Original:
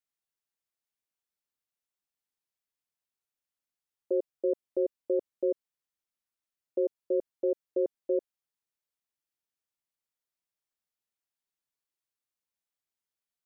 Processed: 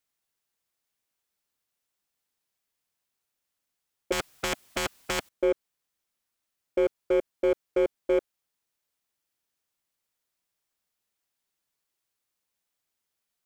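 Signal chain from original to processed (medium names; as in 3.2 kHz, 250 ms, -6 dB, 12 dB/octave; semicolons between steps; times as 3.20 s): in parallel at -5 dB: wavefolder -32 dBFS; 4.12–5.29 s: on the sum: spectrum-flattening compressor 4:1; trim +4.5 dB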